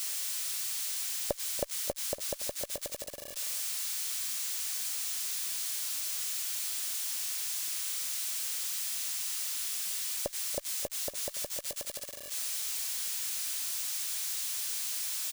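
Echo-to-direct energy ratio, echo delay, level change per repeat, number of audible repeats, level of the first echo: -15.5 dB, 0.285 s, -8.0 dB, 2, -16.0 dB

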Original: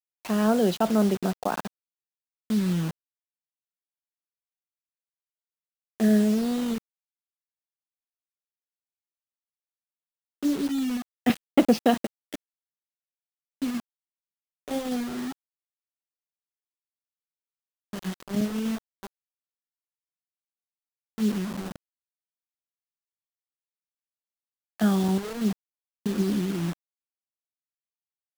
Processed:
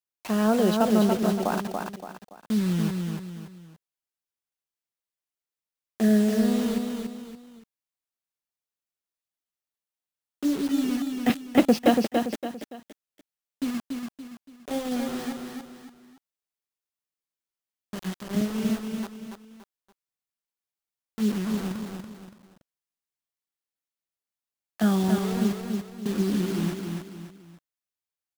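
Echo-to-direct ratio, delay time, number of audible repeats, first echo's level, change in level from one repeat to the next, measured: -4.0 dB, 0.285 s, 3, -4.5 dB, -8.5 dB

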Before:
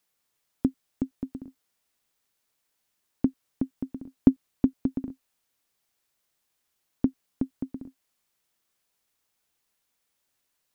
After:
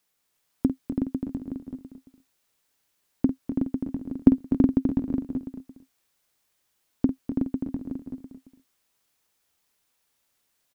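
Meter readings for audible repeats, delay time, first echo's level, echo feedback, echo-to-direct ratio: 5, 49 ms, -9.5 dB, no steady repeat, -1.5 dB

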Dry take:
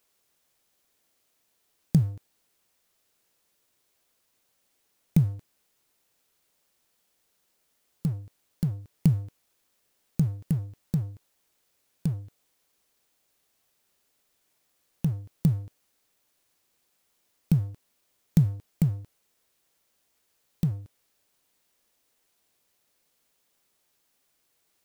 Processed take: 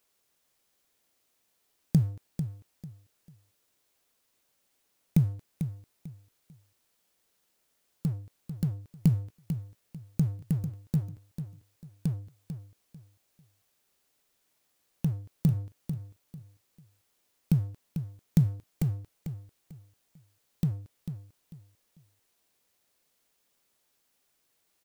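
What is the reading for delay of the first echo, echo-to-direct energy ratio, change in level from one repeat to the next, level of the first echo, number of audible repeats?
0.445 s, -9.0 dB, -11.5 dB, -9.5 dB, 3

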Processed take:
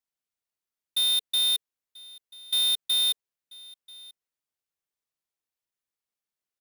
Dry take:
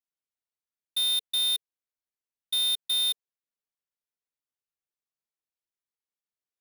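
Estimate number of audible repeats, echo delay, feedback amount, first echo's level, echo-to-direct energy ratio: 1, 0.987 s, no steady repeat, -22.5 dB, -22.5 dB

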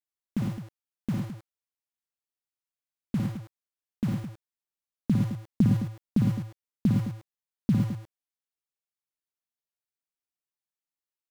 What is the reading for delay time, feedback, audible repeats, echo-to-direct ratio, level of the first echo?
56 ms, no steady repeat, 3, -1.0 dB, -5.0 dB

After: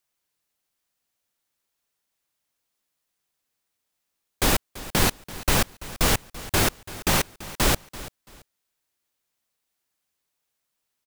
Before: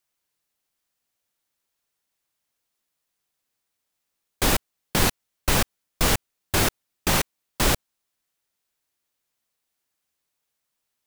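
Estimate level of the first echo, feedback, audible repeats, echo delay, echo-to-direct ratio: -17.0 dB, 25%, 2, 0.336 s, -17.0 dB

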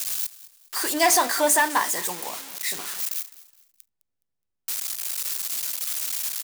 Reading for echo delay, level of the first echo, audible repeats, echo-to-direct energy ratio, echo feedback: 0.209 s, -18.5 dB, 2, -18.0 dB, 34%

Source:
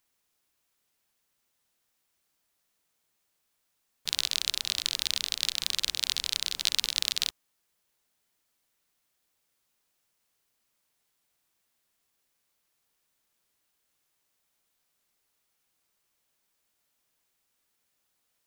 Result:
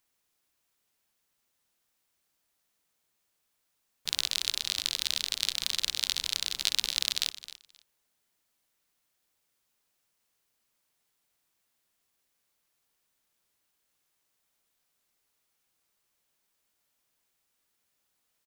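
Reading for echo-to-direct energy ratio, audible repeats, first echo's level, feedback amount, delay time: -15.0 dB, 2, -15.0 dB, 17%, 0.264 s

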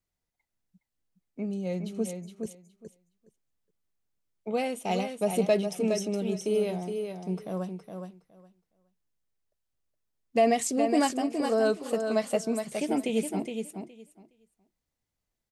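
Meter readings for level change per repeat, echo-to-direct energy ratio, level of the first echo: -16.0 dB, -6.5 dB, -6.5 dB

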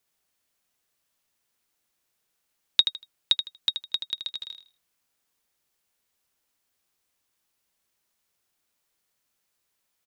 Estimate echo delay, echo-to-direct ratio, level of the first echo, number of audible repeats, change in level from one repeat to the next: 79 ms, -8.0 dB, -8.5 dB, 3, -12.5 dB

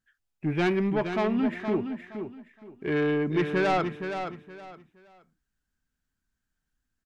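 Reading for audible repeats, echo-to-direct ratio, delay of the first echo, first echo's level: 3, -7.5 dB, 0.469 s, -8.0 dB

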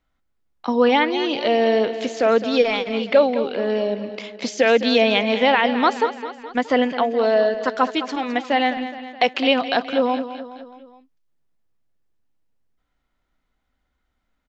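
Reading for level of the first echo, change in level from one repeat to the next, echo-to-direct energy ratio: -12.0 dB, -5.0 dB, -10.5 dB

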